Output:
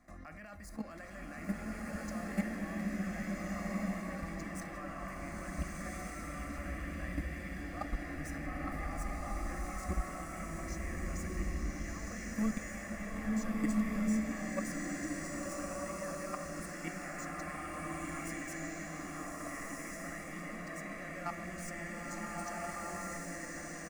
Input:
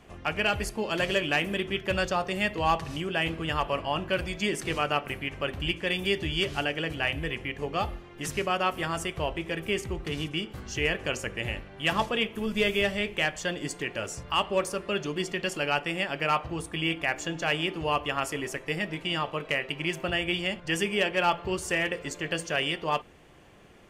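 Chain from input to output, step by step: median filter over 3 samples; notches 60/120/180/240 Hz; comb 1 ms, depth 46%; compressor, threshold -27 dBFS, peak gain reduction 9.5 dB; limiter -27 dBFS, peak gain reduction 10.5 dB; level quantiser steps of 17 dB; fixed phaser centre 610 Hz, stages 8; bloom reverb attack 1.53 s, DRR -5.5 dB; gain +5.5 dB

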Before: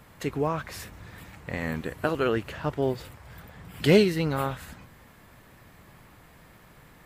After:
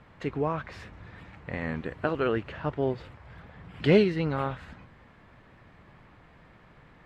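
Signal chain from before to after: LPF 3100 Hz 12 dB/oct; gain -1.5 dB

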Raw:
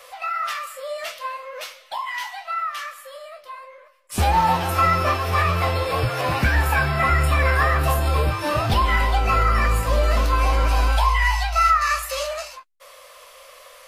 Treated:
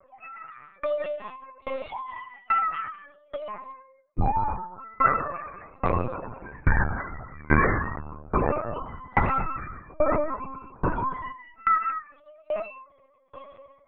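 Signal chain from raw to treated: 6.7–7.38 CVSD 16 kbps; 10.35–12.27 gate -17 dBFS, range -12 dB; AGC gain up to 13.5 dB; loudest bins only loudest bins 16; non-linear reverb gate 0.26 s rising, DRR -0.5 dB; LPC vocoder at 8 kHz pitch kept; dB-ramp tremolo decaying 1.2 Hz, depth 30 dB; gain -8 dB

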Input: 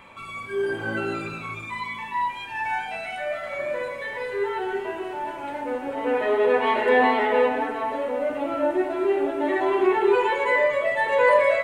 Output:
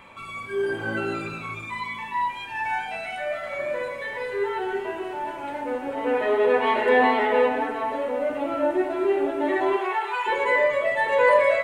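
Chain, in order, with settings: 9.76–10.26 HPF 440 Hz -> 930 Hz 24 dB/oct

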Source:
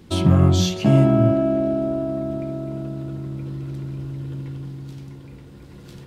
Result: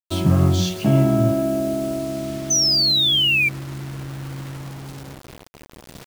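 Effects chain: painted sound fall, 2.5–3.49, 2300–6200 Hz -16 dBFS; bit-crush 6-bit; gain -1.5 dB

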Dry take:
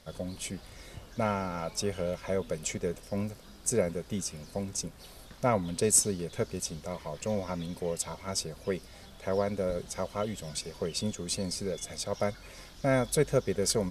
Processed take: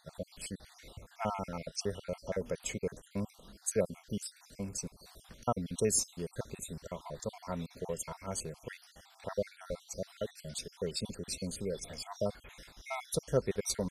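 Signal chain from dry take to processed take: random spectral dropouts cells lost 52%; gain -2.5 dB

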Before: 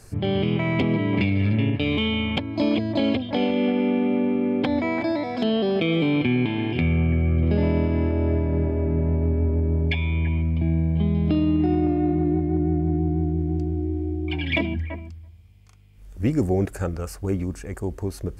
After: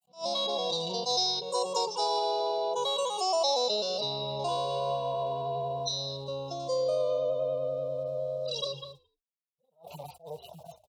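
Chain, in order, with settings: median-filter separation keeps harmonic; weighting filter A; gate -55 dBFS, range -56 dB; band shelf 950 Hz -12.5 dB 1.1 oct; in parallel at +1 dB: compressor, threshold -38 dBFS, peak gain reduction 14 dB; on the sum: fixed phaser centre 430 Hz, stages 4; on a send: frequency-shifting echo 0.188 s, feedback 30%, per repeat -34 Hz, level -23 dB; on the sum: wide varispeed 1.69×; attack slew limiter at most 230 dB/s

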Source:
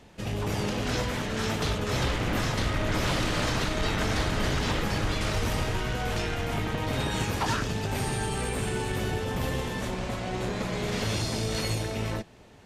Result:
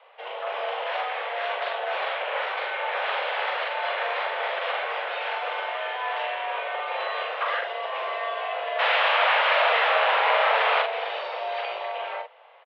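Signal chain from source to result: 8.78–10.81 sine folder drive 16 dB -> 12 dB, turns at -19 dBFS; doubler 43 ms -4 dB; mistuned SSB +260 Hz 260–3000 Hz; gain +1.5 dB

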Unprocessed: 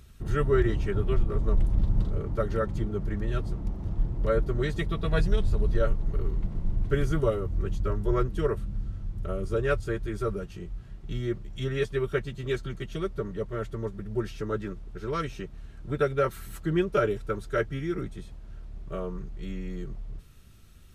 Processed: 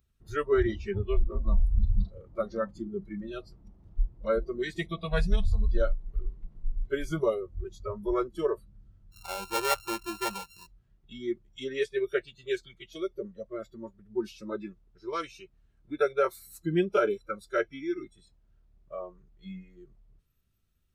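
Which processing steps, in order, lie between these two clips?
9.12–10.67 sample sorter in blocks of 32 samples; spectral noise reduction 22 dB

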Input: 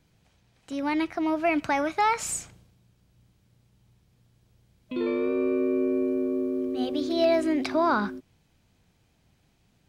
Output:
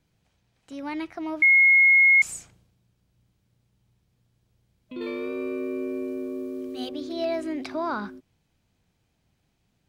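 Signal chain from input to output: 1.42–2.22 bleep 2160 Hz -7.5 dBFS; 5.01–6.89 high shelf 2200 Hz +11.5 dB; gain -5.5 dB

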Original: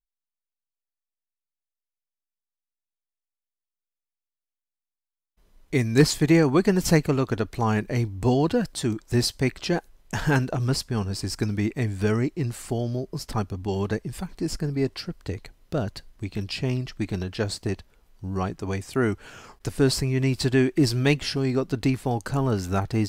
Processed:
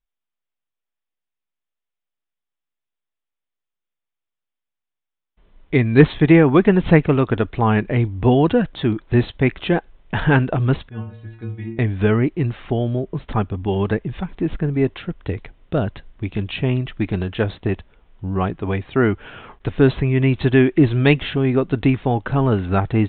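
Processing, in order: 10.89–11.79 metallic resonator 110 Hz, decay 0.64 s, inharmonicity 0.008; downsampling 8000 Hz; gain +6.5 dB

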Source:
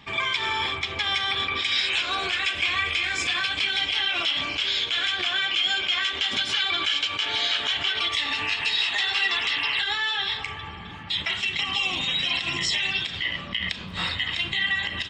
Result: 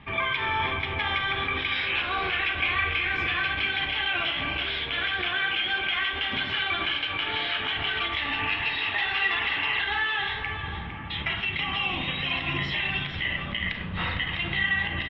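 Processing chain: LPF 2800 Hz 24 dB/oct; low shelf 110 Hz +9.5 dB; echo 0.457 s -10.5 dB; reverb RT60 0.50 s, pre-delay 37 ms, DRR 6.5 dB

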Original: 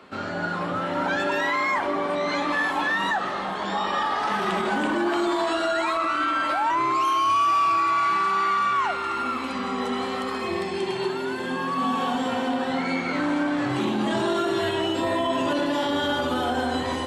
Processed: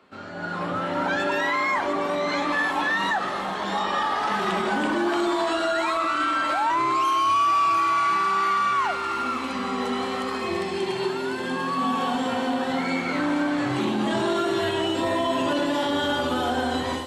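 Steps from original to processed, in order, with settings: AGC gain up to 9 dB; on a send: thin delay 0.694 s, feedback 61%, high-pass 4500 Hz, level -5 dB; on the sum: gain -8.5 dB

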